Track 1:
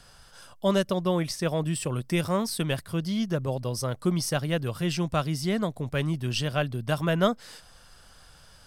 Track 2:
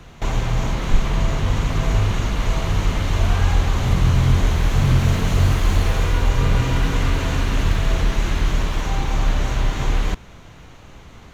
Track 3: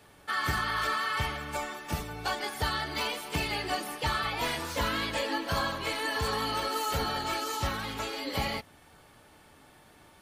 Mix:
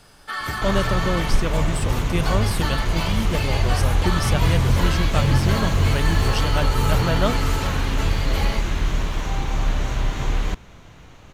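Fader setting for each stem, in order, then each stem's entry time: +0.5, -2.5, +2.0 dB; 0.00, 0.40, 0.00 s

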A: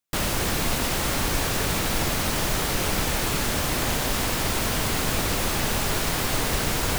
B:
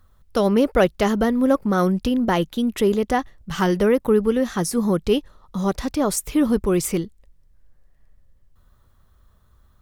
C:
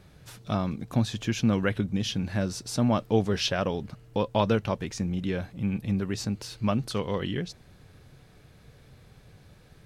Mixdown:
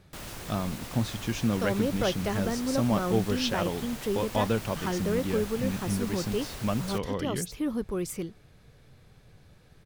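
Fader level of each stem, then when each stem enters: -16.0, -11.5, -3.0 dB; 0.00, 1.25, 0.00 s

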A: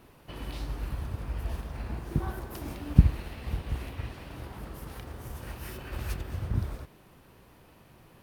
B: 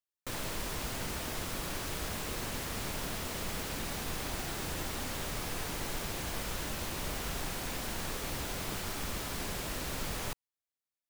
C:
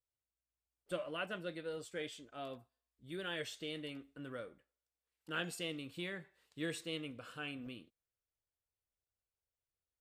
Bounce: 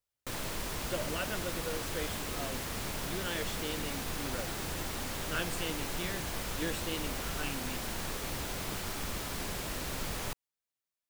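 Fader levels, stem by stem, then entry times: off, 0.0 dB, +3.0 dB; off, 0.00 s, 0.00 s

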